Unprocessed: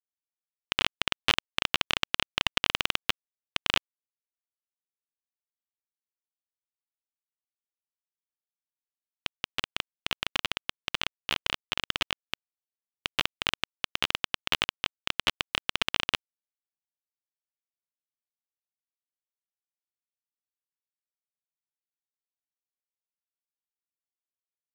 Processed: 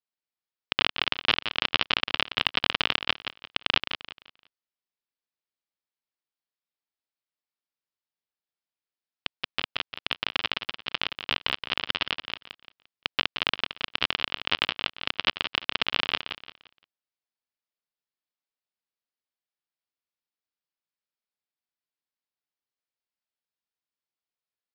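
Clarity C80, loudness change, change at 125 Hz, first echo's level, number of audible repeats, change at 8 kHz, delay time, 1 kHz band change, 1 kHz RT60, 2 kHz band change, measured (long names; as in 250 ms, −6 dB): no reverb audible, +2.5 dB, 0.0 dB, −9.0 dB, 3, below −10 dB, 173 ms, +2.5 dB, no reverb audible, +2.5 dB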